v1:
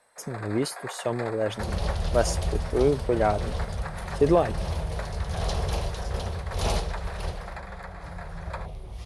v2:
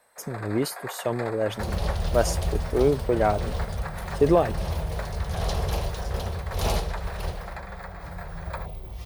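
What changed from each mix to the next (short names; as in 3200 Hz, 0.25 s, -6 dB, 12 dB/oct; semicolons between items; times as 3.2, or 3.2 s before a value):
master: remove elliptic low-pass 11000 Hz, stop band 80 dB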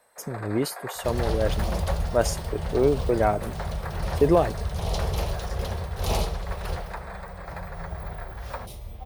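first sound: add tilt -1.5 dB/oct; second sound: entry -0.55 s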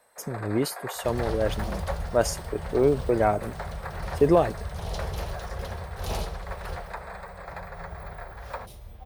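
second sound -5.5 dB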